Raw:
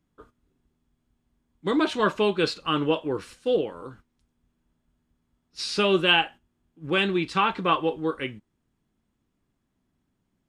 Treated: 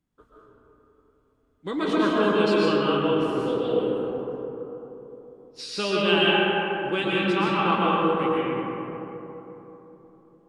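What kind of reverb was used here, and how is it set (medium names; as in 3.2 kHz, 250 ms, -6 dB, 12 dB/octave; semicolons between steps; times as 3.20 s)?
algorithmic reverb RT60 3.7 s, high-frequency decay 0.35×, pre-delay 85 ms, DRR -7 dB; trim -6 dB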